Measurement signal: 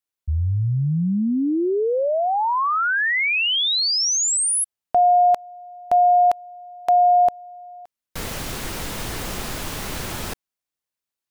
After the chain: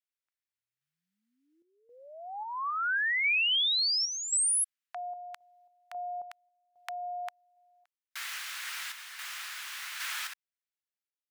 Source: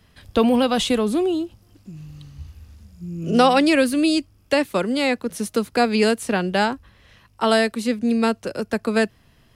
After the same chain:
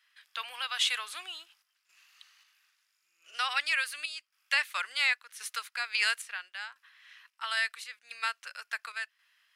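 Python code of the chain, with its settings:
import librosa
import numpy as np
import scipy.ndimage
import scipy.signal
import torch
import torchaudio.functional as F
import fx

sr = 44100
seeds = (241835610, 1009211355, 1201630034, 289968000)

y = scipy.signal.sosfilt(scipy.signal.butter(4, 1500.0, 'highpass', fs=sr, output='sos'), x)
y = fx.high_shelf(y, sr, hz=3100.0, db=-11.0)
y = fx.tremolo_random(y, sr, seeds[0], hz=3.7, depth_pct=80)
y = F.gain(torch.from_numpy(y), 4.5).numpy()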